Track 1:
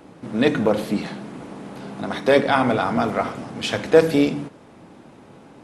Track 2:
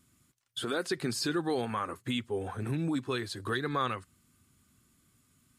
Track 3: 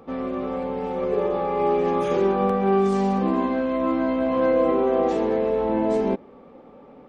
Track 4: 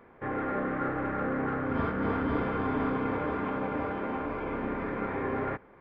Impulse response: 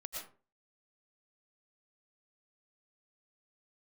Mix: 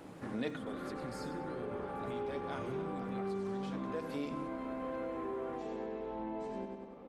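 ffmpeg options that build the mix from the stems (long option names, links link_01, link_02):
-filter_complex "[0:a]volume=-5.5dB[link_01];[1:a]acrossover=split=350[link_02][link_03];[link_03]acompressor=threshold=-43dB:ratio=4[link_04];[link_02][link_04]amix=inputs=2:normalize=0,volume=-4.5dB,asplit=3[link_05][link_06][link_07];[link_06]volume=-10dB[link_08];[2:a]acompressor=mode=upward:threshold=-34dB:ratio=2.5,adelay=500,volume=-10.5dB,asplit=2[link_09][link_10];[link_10]volume=-5.5dB[link_11];[3:a]volume=-10dB[link_12];[link_07]apad=whole_len=248695[link_13];[link_01][link_13]sidechaincompress=threshold=-51dB:ratio=8:attack=16:release=544[link_14];[link_08][link_11]amix=inputs=2:normalize=0,aecho=0:1:97|194|291|388|485|582|679:1|0.47|0.221|0.104|0.0488|0.0229|0.0108[link_15];[link_14][link_05][link_09][link_12][link_15]amix=inputs=5:normalize=0,acompressor=threshold=-41dB:ratio=2.5"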